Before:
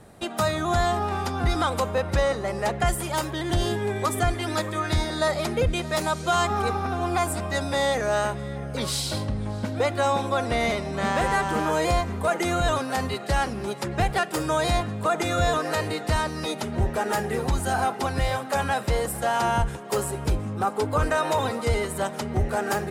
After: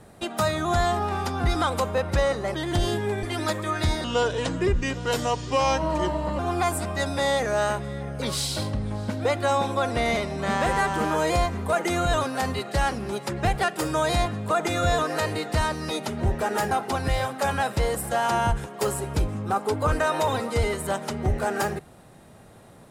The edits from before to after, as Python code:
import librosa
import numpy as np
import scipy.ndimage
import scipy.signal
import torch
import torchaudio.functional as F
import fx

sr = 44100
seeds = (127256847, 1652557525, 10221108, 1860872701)

y = fx.edit(x, sr, fx.cut(start_s=2.54, length_s=0.78),
    fx.cut(start_s=4.01, length_s=0.31),
    fx.speed_span(start_s=5.13, length_s=1.81, speed=0.77),
    fx.cut(start_s=17.26, length_s=0.56), tone=tone)